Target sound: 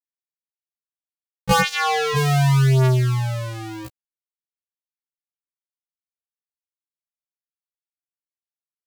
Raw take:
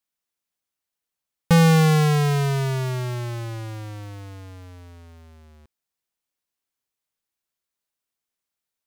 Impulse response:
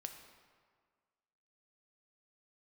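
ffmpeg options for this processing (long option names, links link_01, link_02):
-filter_complex "[0:a]asplit=3[link_01][link_02][link_03];[link_01]afade=type=out:start_time=1.6:duration=0.02[link_04];[link_02]highpass=560,lowpass=5000,afade=type=in:start_time=1.6:duration=0.02,afade=type=out:start_time=2.15:duration=0.02[link_05];[link_03]afade=type=in:start_time=2.15:duration=0.02[link_06];[link_04][link_05][link_06]amix=inputs=3:normalize=0,aeval=exprs='val(0)*gte(abs(val(0)),0.02)':channel_layout=same,afftfilt=real='re*1.73*eq(mod(b,3),0)':imag='im*1.73*eq(mod(b,3),0)':win_size=2048:overlap=0.75,volume=7dB"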